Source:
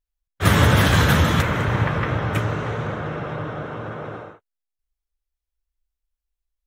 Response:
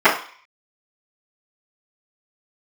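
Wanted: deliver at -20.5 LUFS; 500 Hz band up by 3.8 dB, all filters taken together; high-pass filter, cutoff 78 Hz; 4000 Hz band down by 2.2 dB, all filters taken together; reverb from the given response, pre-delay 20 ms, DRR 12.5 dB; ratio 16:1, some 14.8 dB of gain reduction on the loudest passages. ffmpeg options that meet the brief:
-filter_complex "[0:a]highpass=78,equalizer=f=500:t=o:g=4.5,equalizer=f=4k:t=o:g=-3,acompressor=threshold=-26dB:ratio=16,asplit=2[a][b];[1:a]atrim=start_sample=2205,adelay=20[c];[b][c]afir=irnorm=-1:irlink=0,volume=-39dB[d];[a][d]amix=inputs=2:normalize=0,volume=10.5dB"

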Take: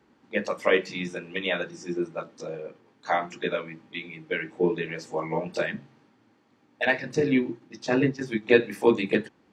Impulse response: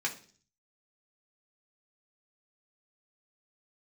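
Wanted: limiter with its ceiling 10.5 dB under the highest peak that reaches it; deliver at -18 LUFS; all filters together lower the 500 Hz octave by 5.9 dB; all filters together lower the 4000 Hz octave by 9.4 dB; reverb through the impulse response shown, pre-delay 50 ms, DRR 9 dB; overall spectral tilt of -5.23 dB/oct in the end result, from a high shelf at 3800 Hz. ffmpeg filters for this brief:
-filter_complex "[0:a]equalizer=f=500:t=o:g=-7,highshelf=f=3.8k:g=-8.5,equalizer=f=4k:t=o:g=-7.5,alimiter=limit=-19.5dB:level=0:latency=1,asplit=2[a][b];[1:a]atrim=start_sample=2205,adelay=50[c];[b][c]afir=irnorm=-1:irlink=0,volume=-14.5dB[d];[a][d]amix=inputs=2:normalize=0,volume=15.5dB"

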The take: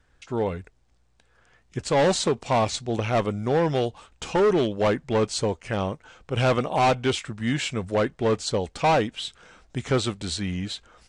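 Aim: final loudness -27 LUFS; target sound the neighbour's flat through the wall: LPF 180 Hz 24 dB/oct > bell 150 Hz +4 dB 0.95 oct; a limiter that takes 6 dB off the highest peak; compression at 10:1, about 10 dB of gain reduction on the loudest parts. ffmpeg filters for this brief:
-af "acompressor=threshold=-28dB:ratio=10,alimiter=level_in=1dB:limit=-24dB:level=0:latency=1,volume=-1dB,lowpass=f=180:w=0.5412,lowpass=f=180:w=1.3066,equalizer=f=150:t=o:w=0.95:g=4,volume=12.5dB"

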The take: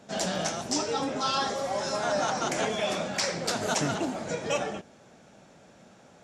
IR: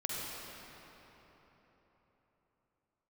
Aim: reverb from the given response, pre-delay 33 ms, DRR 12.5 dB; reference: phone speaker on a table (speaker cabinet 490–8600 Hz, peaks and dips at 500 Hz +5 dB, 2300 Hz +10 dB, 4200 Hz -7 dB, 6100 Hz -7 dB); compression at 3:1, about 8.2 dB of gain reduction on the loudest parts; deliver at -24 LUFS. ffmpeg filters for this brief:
-filter_complex "[0:a]acompressor=threshold=-35dB:ratio=3,asplit=2[a][b];[1:a]atrim=start_sample=2205,adelay=33[c];[b][c]afir=irnorm=-1:irlink=0,volume=-16.5dB[d];[a][d]amix=inputs=2:normalize=0,highpass=f=490:w=0.5412,highpass=f=490:w=1.3066,equalizer=f=500:t=q:w=4:g=5,equalizer=f=2.3k:t=q:w=4:g=10,equalizer=f=4.2k:t=q:w=4:g=-7,equalizer=f=6.1k:t=q:w=4:g=-7,lowpass=f=8.6k:w=0.5412,lowpass=f=8.6k:w=1.3066,volume=12dB"

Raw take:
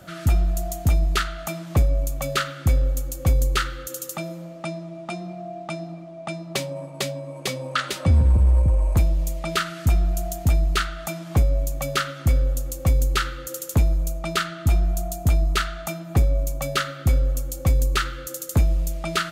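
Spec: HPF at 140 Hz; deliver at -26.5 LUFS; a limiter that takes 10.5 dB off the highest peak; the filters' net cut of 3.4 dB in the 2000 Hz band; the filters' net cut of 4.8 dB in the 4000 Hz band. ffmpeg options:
-af "highpass=140,equalizer=f=2k:t=o:g=-3.5,equalizer=f=4k:t=o:g=-5,volume=6.5dB,alimiter=limit=-14dB:level=0:latency=1"

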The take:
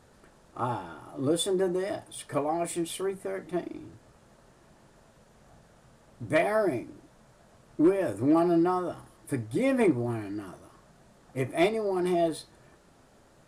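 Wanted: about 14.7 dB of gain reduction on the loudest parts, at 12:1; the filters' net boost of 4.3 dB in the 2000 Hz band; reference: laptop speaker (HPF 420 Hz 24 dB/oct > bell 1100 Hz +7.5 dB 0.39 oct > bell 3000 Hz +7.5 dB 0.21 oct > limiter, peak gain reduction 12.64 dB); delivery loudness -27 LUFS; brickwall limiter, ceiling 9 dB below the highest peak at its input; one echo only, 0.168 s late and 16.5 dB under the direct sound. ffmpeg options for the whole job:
-af "equalizer=f=2k:t=o:g=4,acompressor=threshold=-33dB:ratio=12,alimiter=level_in=8dB:limit=-24dB:level=0:latency=1,volume=-8dB,highpass=f=420:w=0.5412,highpass=f=420:w=1.3066,equalizer=f=1.1k:t=o:w=0.39:g=7.5,equalizer=f=3k:t=o:w=0.21:g=7.5,aecho=1:1:168:0.15,volume=24.5dB,alimiter=limit=-17.5dB:level=0:latency=1"

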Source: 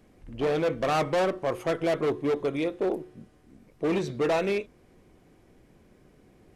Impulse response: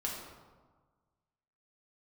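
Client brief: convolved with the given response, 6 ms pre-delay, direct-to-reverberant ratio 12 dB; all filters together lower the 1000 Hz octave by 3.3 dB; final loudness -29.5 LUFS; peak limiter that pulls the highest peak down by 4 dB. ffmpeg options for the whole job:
-filter_complex "[0:a]equalizer=f=1k:t=o:g=-5,alimiter=limit=-23dB:level=0:latency=1,asplit=2[a][b];[1:a]atrim=start_sample=2205,adelay=6[c];[b][c]afir=irnorm=-1:irlink=0,volume=-15dB[d];[a][d]amix=inputs=2:normalize=0,volume=1.5dB"

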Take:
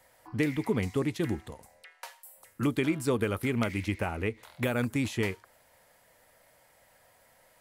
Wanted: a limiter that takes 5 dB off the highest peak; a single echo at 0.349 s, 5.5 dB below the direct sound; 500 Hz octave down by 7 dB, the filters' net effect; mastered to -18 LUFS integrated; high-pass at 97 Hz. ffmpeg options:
-af "highpass=97,equalizer=f=500:t=o:g=-9,alimiter=limit=-21.5dB:level=0:latency=1,aecho=1:1:349:0.531,volume=16.5dB"

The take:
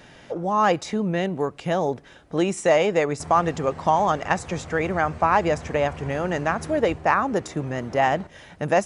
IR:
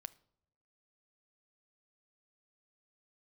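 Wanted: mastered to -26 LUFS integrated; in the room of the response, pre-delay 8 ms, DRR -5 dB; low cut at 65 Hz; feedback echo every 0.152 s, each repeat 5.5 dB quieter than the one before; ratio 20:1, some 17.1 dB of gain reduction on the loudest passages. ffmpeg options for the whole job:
-filter_complex "[0:a]highpass=65,acompressor=threshold=-31dB:ratio=20,aecho=1:1:152|304|456|608|760|912|1064:0.531|0.281|0.149|0.079|0.0419|0.0222|0.0118,asplit=2[a][b];[1:a]atrim=start_sample=2205,adelay=8[c];[b][c]afir=irnorm=-1:irlink=0,volume=10dB[d];[a][d]amix=inputs=2:normalize=0,volume=3.5dB"

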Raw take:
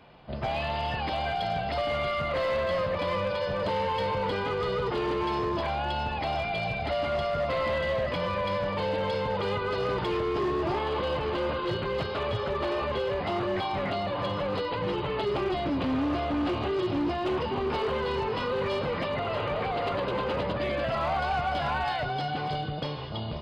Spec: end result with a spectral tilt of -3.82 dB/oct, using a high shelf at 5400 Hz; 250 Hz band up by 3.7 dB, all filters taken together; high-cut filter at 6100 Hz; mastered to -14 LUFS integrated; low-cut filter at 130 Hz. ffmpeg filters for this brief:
-af "highpass=130,lowpass=6.1k,equalizer=f=250:t=o:g=5.5,highshelf=f=5.4k:g=3.5,volume=14dB"

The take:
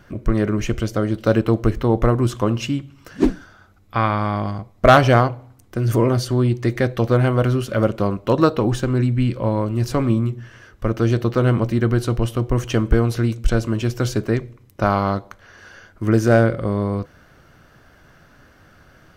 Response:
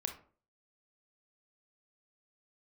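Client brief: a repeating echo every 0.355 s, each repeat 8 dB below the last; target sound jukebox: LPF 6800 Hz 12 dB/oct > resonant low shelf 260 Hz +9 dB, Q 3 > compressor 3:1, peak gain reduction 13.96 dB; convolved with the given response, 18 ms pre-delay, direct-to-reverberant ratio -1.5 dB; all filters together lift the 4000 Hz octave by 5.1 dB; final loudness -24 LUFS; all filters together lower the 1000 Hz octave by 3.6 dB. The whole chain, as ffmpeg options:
-filter_complex "[0:a]equalizer=f=1k:t=o:g=-4.5,equalizer=f=4k:t=o:g=7.5,aecho=1:1:355|710|1065|1420|1775:0.398|0.159|0.0637|0.0255|0.0102,asplit=2[a][b];[1:a]atrim=start_sample=2205,adelay=18[c];[b][c]afir=irnorm=-1:irlink=0,volume=1.5dB[d];[a][d]amix=inputs=2:normalize=0,lowpass=6.8k,lowshelf=f=260:t=q:w=3:g=9,acompressor=threshold=-14dB:ratio=3,volume=-8dB"

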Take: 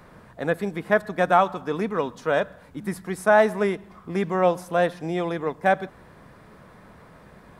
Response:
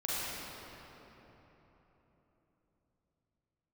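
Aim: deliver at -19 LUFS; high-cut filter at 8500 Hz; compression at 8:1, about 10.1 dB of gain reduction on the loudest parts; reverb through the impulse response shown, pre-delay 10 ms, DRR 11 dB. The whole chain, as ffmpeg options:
-filter_complex "[0:a]lowpass=8.5k,acompressor=threshold=-22dB:ratio=8,asplit=2[a][b];[1:a]atrim=start_sample=2205,adelay=10[c];[b][c]afir=irnorm=-1:irlink=0,volume=-18dB[d];[a][d]amix=inputs=2:normalize=0,volume=10dB"

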